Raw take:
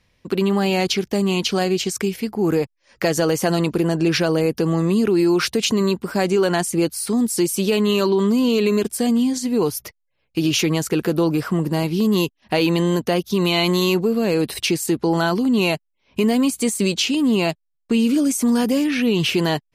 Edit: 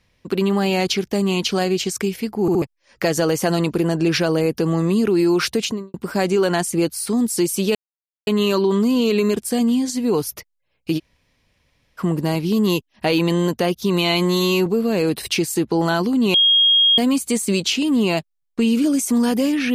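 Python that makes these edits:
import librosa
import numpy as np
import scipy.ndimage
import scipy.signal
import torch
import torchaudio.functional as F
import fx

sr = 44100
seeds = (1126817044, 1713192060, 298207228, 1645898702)

y = fx.studio_fade_out(x, sr, start_s=5.56, length_s=0.38)
y = fx.edit(y, sr, fx.stutter_over(start_s=2.41, slice_s=0.07, count=3),
    fx.insert_silence(at_s=7.75, length_s=0.52),
    fx.room_tone_fill(start_s=10.46, length_s=1.01, crossfade_s=0.04),
    fx.stretch_span(start_s=13.66, length_s=0.32, factor=1.5),
    fx.bleep(start_s=15.66, length_s=0.64, hz=3260.0, db=-11.0), tone=tone)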